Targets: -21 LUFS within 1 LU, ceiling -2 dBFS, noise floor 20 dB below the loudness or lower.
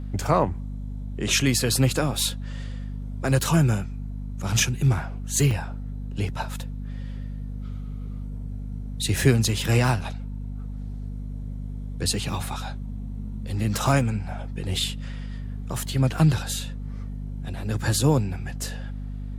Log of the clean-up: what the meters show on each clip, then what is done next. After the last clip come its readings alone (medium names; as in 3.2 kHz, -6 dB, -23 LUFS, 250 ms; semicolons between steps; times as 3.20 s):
dropouts 1; longest dropout 3.3 ms; hum 50 Hz; highest harmonic 250 Hz; hum level -30 dBFS; loudness -26.5 LUFS; peak level -6.0 dBFS; loudness target -21.0 LUFS
-> interpolate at 5.51 s, 3.3 ms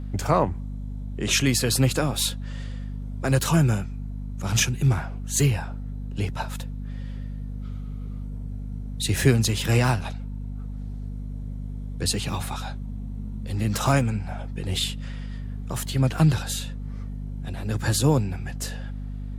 dropouts 0; hum 50 Hz; highest harmonic 250 Hz; hum level -30 dBFS
-> de-hum 50 Hz, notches 5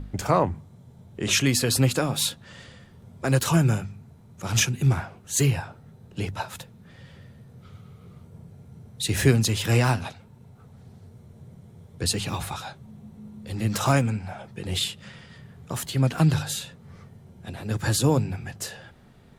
hum not found; loudness -25.0 LUFS; peak level -6.5 dBFS; loudness target -21.0 LUFS
-> trim +4 dB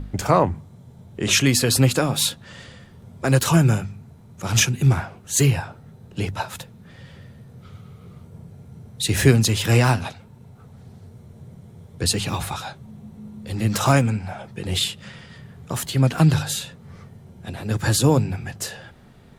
loudness -21.0 LUFS; peak level -2.5 dBFS; noise floor -47 dBFS